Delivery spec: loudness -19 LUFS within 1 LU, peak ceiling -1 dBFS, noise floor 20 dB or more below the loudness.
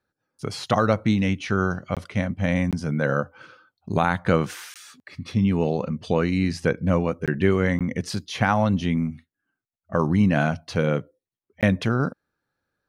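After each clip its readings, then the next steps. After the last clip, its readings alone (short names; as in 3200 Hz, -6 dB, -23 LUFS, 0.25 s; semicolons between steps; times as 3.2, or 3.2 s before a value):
dropouts 6; longest dropout 17 ms; loudness -24.0 LUFS; peak -6.0 dBFS; loudness target -19.0 LUFS
-> interpolate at 1.95/2.71/4.74/7.26/7.79/11.61, 17 ms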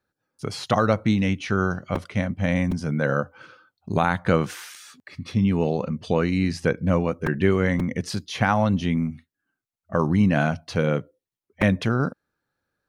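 dropouts 0; loudness -23.5 LUFS; peak -6.0 dBFS; loudness target -19.0 LUFS
-> gain +4.5 dB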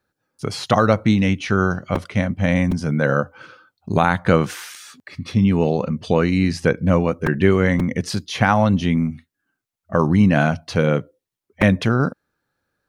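loudness -19.0 LUFS; peak -1.5 dBFS; noise floor -83 dBFS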